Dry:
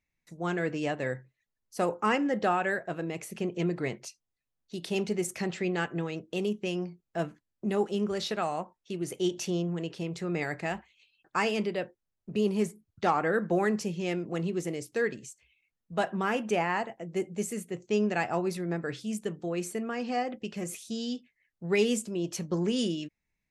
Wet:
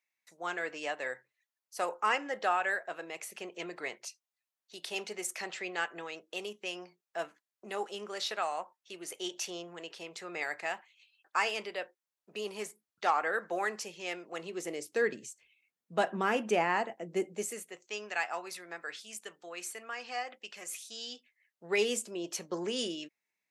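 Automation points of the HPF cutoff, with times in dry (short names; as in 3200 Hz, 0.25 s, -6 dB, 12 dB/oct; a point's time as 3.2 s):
14.31 s 710 Hz
15.16 s 240 Hz
17.18 s 240 Hz
17.85 s 1000 Hz
20.87 s 1000 Hz
21.79 s 450 Hz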